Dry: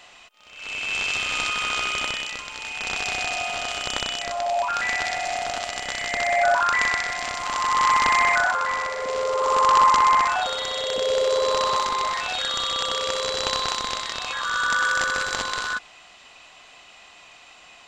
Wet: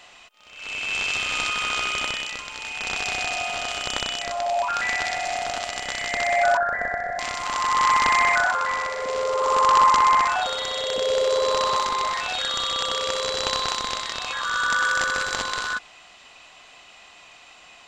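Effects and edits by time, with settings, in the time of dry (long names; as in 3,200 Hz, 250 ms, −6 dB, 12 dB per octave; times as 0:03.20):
0:06.57–0:07.19: drawn EQ curve 210 Hz 0 dB, 360 Hz −4 dB, 700 Hz +9 dB, 1,000 Hz −19 dB, 1,700 Hz +4 dB, 2,600 Hz −30 dB, 5,000 Hz −24 dB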